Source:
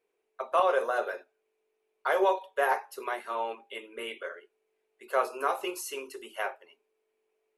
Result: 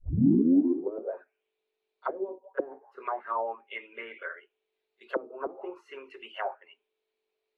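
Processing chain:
turntable start at the beginning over 1.08 s
backwards echo 31 ms −22 dB
envelope-controlled low-pass 280–4,100 Hz down, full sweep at −24 dBFS
level −6 dB

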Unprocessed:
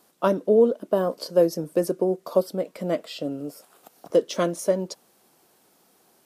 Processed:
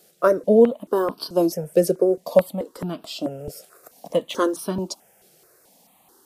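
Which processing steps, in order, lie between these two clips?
0:02.58–0:03.02: downward compressor, threshold −25 dBFS, peak gain reduction 6 dB
step-sequenced phaser 4.6 Hz 270–2,000 Hz
level +6.5 dB

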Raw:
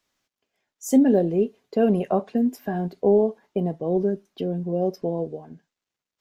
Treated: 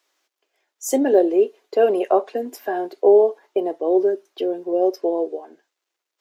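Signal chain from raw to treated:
elliptic high-pass filter 330 Hz, stop band 80 dB
level +6.5 dB

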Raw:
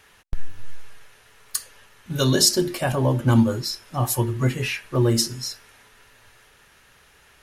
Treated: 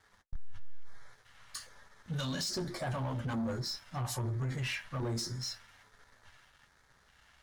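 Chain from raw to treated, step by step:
high-frequency loss of the air 74 metres
flanger 0.36 Hz, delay 9.2 ms, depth 7.9 ms, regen −33%
parametric band 350 Hz −6 dB 1.2 octaves
notch filter 2,500 Hz, Q 9.4
brickwall limiter −23.5 dBFS, peak gain reduction 11.5 dB
auto-filter notch square 1.2 Hz 390–2,800 Hz
leveller curve on the samples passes 2
level −7 dB

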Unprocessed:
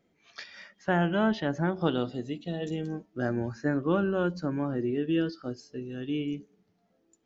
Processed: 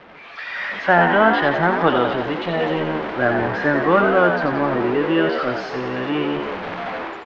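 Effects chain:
converter with a step at zero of −33 dBFS
low-pass filter 4,700 Hz 24 dB per octave
three-way crossover with the lows and the highs turned down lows −13 dB, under 550 Hz, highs −18 dB, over 2,600 Hz
automatic gain control gain up to 16 dB
on a send: echo with shifted repeats 88 ms, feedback 59%, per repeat +71 Hz, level −6 dB

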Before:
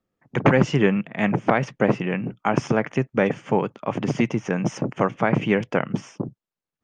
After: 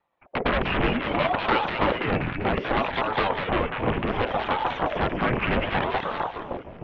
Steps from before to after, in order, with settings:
high-pass filter 45 Hz 24 dB per octave
hum removal 69.4 Hz, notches 7
reverb reduction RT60 0.58 s
in parallel at −8.5 dB: sine wavefolder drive 18 dB, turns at −4 dBFS
on the sum: single-sideband voice off tune −210 Hz 230–3,300 Hz
on a send: echo with a time of its own for lows and highs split 740 Hz, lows 307 ms, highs 196 ms, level −3.5 dB
on the sum: ring modulator whose carrier an LFO sweeps 500 Hz, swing 75%, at 0.65 Hz
level −5.5 dB

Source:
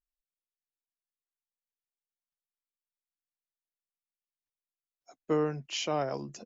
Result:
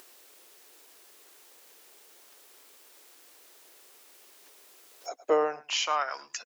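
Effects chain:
on a send: single-tap delay 106 ms −19.5 dB
on the sum: high-pass filter sweep 380 Hz → 1,700 Hz, 0:04.90–0:06.31
parametric band 100 Hz −5.5 dB 1.3 octaves
upward compression, threshold −32 dBFS
level +4.5 dB

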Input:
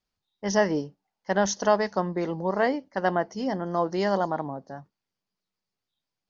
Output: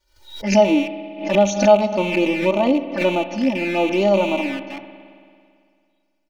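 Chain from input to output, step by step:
loose part that buzzes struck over −41 dBFS, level −22 dBFS
flanger swept by the level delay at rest 2.1 ms, full sweep at −22.5 dBFS
comb filter 3.4 ms, depth 99%
harmonic and percussive parts rebalanced harmonic +8 dB
spring reverb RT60 2.2 s, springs 55 ms, chirp 40 ms, DRR 11 dB
background raised ahead of every attack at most 110 dB per second
level −1.5 dB

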